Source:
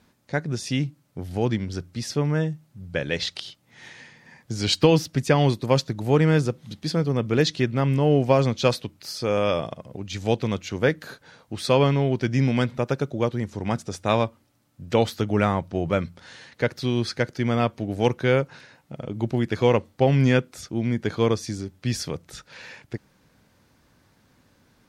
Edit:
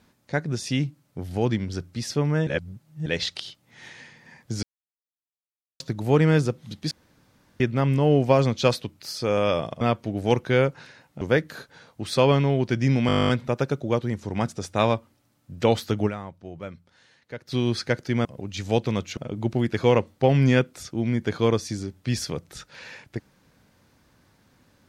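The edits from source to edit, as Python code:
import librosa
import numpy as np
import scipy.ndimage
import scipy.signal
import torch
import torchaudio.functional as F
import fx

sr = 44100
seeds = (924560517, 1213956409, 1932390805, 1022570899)

y = fx.edit(x, sr, fx.reverse_span(start_s=2.47, length_s=0.59),
    fx.silence(start_s=4.63, length_s=1.17),
    fx.room_tone_fill(start_s=6.91, length_s=0.69),
    fx.swap(start_s=9.81, length_s=0.92, other_s=17.55, other_length_s=1.4),
    fx.stutter(start_s=12.59, slice_s=0.02, count=12),
    fx.fade_down_up(start_s=15.36, length_s=1.46, db=-13.5, fade_s=0.25, curve='exp'), tone=tone)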